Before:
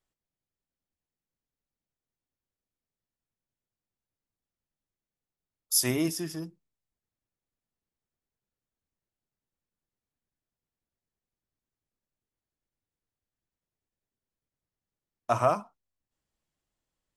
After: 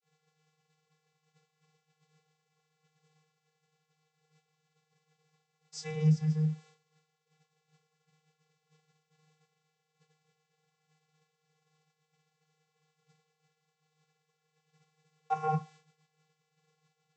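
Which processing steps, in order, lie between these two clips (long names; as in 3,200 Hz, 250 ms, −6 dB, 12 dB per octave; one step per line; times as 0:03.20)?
bit-depth reduction 8 bits, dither triangular
channel vocoder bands 32, square 155 Hz
downward expander −50 dBFS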